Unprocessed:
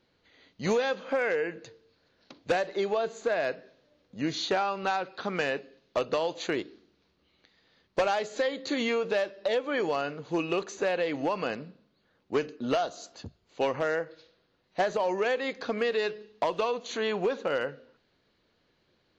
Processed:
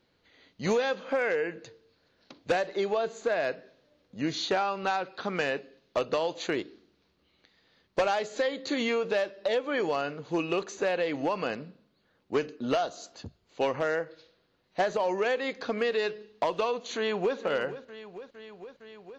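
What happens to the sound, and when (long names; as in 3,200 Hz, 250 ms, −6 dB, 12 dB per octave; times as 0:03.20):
0:16.96–0:17.38: delay throw 460 ms, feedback 80%, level −13.5 dB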